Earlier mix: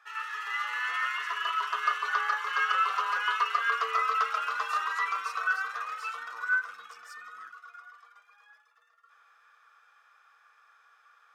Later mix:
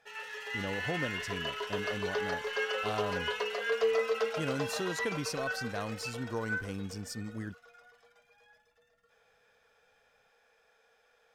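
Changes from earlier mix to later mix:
speech +11.0 dB; master: remove resonant high-pass 1200 Hz, resonance Q 12

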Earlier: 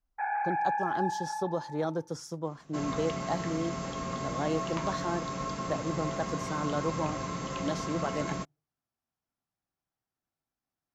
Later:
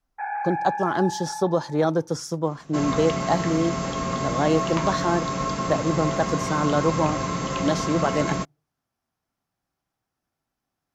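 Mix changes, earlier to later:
speech +10.0 dB; first sound: send +6.5 dB; second sound +8.5 dB

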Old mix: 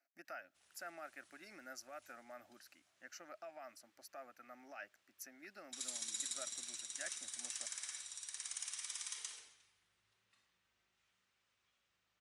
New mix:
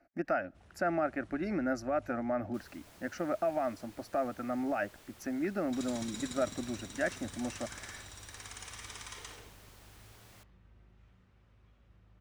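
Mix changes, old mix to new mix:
first sound -5.0 dB; second sound: unmuted; master: remove differentiator

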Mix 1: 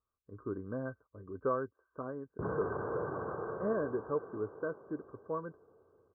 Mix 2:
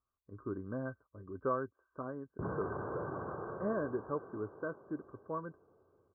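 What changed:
background: add air absorption 370 m; master: add bell 460 Hz -6 dB 0.27 oct

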